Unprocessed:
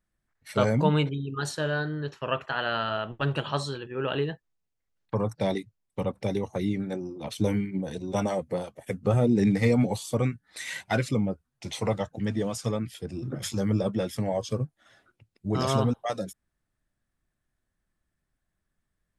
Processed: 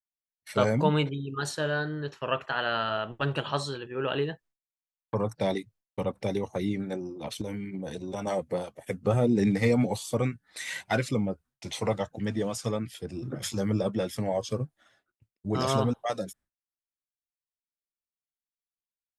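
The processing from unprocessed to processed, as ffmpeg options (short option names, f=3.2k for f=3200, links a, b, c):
-filter_complex "[0:a]asettb=1/sr,asplit=3[a][b][c];[a]atrim=end=7.414[d];[b]atrim=start=7.41:end=8.27,asetpts=PTS-STARTPTS,afade=t=in:d=0.004:c=qsin,afade=t=out:st=0.856:d=0.004:c=qsin,acompressor=threshold=-29dB:ratio=6:attack=3.2:release=140:knee=1:detection=peak[e];[c]atrim=start=8.266[f];[d][e]acrossfade=d=0.004:c1=hsin:c2=qsin[g];[g][f]acrossfade=d=0.004:c1=qsin:c2=hsin,agate=range=-33dB:threshold=-51dB:ratio=3:detection=peak,bass=f=250:g=-3,treble=f=4k:g=0"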